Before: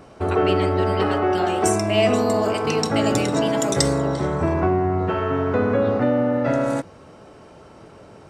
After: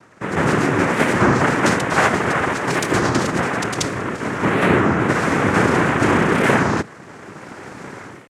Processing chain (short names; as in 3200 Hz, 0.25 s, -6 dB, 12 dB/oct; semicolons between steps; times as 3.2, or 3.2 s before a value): notch 2700 Hz, Q 5.8; comb 2.8 ms, depth 51%; AGC gain up to 15 dB; noise vocoder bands 3; record warp 33 1/3 rpm, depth 250 cents; gain -4 dB